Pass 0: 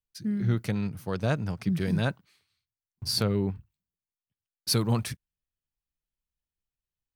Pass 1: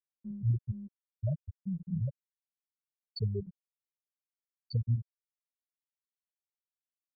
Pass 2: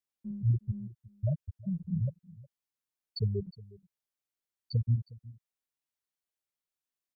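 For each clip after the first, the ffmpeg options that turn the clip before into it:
-af "afftfilt=real='re*gte(hypot(re,im),0.355)':imag='im*gte(hypot(re,im),0.355)':win_size=1024:overlap=0.75,aecho=1:1:2.1:0.7,volume=-3.5dB"
-af "aecho=1:1:362:0.0944,volume=2dB"

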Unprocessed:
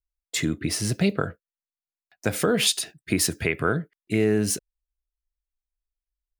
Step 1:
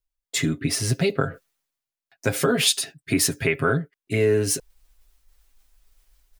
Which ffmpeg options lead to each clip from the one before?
-af "aecho=1:1:7.4:0.8,areverse,acompressor=mode=upward:threshold=-36dB:ratio=2.5,areverse"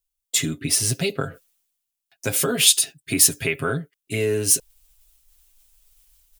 -af "aexciter=amount=2.8:drive=3.1:freq=2.6k,volume=-3dB"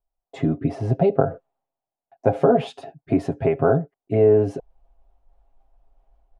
-af "lowpass=f=740:t=q:w=4.9,volume=4.5dB"

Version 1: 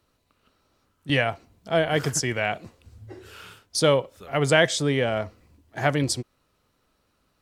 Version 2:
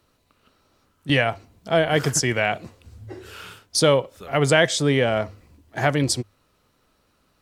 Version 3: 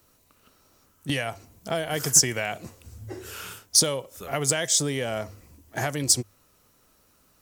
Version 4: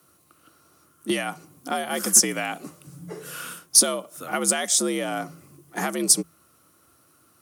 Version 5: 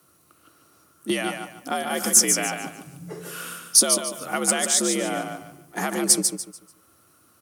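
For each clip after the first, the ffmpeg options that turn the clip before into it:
-filter_complex "[0:a]bandreject=f=50:t=h:w=6,bandreject=f=100:t=h:w=6,asplit=2[a][b];[b]alimiter=limit=-12.5dB:level=0:latency=1:release=395,volume=1dB[c];[a][c]amix=inputs=2:normalize=0,volume=-2dB"
-filter_complex "[0:a]acrossover=split=4200[a][b];[a]acompressor=threshold=-25dB:ratio=6[c];[c][b]amix=inputs=2:normalize=0,aexciter=amount=1.8:drive=8.6:freq=5.6k"
-af "afreqshift=65,superequalizer=6b=1.78:10b=2:16b=2.24"
-af "aecho=1:1:146|292|438|584:0.501|0.145|0.0421|0.0122"

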